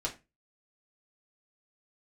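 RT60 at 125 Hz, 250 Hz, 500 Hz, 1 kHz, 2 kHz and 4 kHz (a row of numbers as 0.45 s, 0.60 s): 0.35 s, 0.30 s, 0.25 s, 0.25 s, 0.25 s, 0.20 s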